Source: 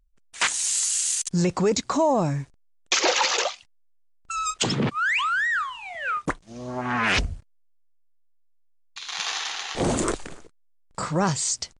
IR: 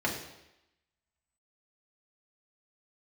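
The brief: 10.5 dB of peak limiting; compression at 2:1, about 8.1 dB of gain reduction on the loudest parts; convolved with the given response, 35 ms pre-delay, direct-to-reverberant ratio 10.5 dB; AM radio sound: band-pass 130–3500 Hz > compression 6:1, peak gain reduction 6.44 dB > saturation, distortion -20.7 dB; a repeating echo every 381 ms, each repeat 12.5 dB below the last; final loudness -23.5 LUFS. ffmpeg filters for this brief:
-filter_complex "[0:a]acompressor=threshold=0.0251:ratio=2,alimiter=limit=0.0668:level=0:latency=1,aecho=1:1:381|762|1143:0.237|0.0569|0.0137,asplit=2[s0][s1];[1:a]atrim=start_sample=2205,adelay=35[s2];[s1][s2]afir=irnorm=-1:irlink=0,volume=0.106[s3];[s0][s3]amix=inputs=2:normalize=0,highpass=130,lowpass=3500,acompressor=threshold=0.0251:ratio=6,asoftclip=threshold=0.0376,volume=5.62"

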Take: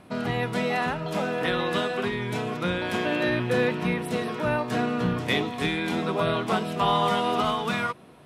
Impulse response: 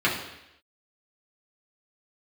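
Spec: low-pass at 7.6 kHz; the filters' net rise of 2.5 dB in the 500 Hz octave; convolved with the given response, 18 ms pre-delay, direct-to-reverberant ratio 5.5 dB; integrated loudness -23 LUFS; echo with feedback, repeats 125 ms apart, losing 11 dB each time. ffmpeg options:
-filter_complex "[0:a]lowpass=7600,equalizer=f=500:t=o:g=3,aecho=1:1:125|250|375:0.282|0.0789|0.0221,asplit=2[s0][s1];[1:a]atrim=start_sample=2205,adelay=18[s2];[s1][s2]afir=irnorm=-1:irlink=0,volume=0.0891[s3];[s0][s3]amix=inputs=2:normalize=0,volume=1.12"

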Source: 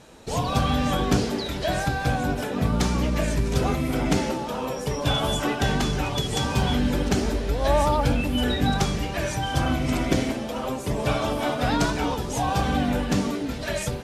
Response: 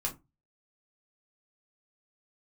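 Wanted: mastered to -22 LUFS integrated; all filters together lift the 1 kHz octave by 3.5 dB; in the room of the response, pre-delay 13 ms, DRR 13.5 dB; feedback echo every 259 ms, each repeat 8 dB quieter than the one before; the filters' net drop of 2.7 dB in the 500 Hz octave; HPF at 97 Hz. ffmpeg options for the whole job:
-filter_complex "[0:a]highpass=97,equalizer=f=500:t=o:g=-5.5,equalizer=f=1000:t=o:g=6.5,aecho=1:1:259|518|777|1036|1295:0.398|0.159|0.0637|0.0255|0.0102,asplit=2[s0][s1];[1:a]atrim=start_sample=2205,adelay=13[s2];[s1][s2]afir=irnorm=-1:irlink=0,volume=0.15[s3];[s0][s3]amix=inputs=2:normalize=0,volume=1.26"

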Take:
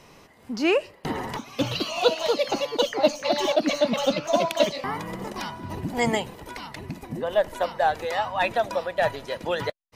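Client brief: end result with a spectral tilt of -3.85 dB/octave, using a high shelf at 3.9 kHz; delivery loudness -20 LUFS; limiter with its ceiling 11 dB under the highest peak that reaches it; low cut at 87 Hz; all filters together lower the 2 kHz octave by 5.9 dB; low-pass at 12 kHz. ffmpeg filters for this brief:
-af "highpass=87,lowpass=12000,equalizer=f=2000:t=o:g=-6,highshelf=f=3900:g=-6,volume=3.16,alimiter=limit=0.376:level=0:latency=1"

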